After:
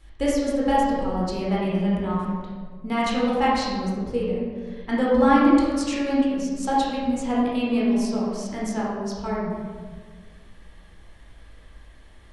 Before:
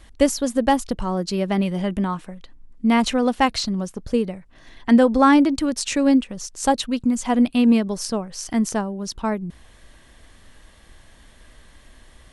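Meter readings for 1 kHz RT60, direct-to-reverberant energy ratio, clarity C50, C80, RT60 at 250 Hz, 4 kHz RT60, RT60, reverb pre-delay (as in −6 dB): 1.4 s, −6.5 dB, −1.5 dB, 1.0 dB, 2.1 s, 0.90 s, 1.6 s, 15 ms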